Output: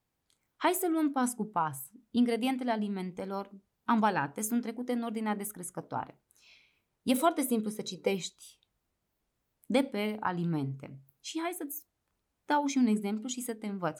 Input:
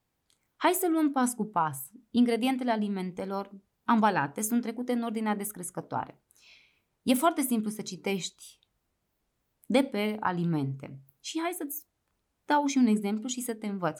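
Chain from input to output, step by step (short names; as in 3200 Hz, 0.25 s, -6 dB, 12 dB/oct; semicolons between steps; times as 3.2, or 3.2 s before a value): 7.14–8.15 small resonant body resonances 500/3900 Hz, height 14 dB; gain -3 dB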